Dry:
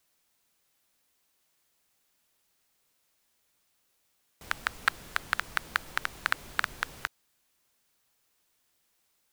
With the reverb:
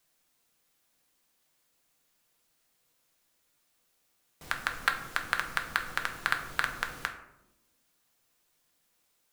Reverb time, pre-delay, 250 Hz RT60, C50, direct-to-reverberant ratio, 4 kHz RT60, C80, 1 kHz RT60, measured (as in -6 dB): 0.90 s, 4 ms, 1.5 s, 9.5 dB, 4.0 dB, 0.40 s, 11.5 dB, 0.80 s